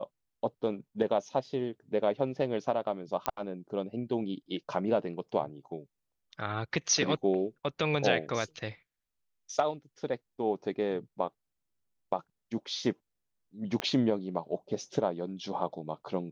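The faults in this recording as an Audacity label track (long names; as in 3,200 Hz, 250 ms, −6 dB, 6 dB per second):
3.260000	3.260000	click −13 dBFS
13.800000	13.800000	click −16 dBFS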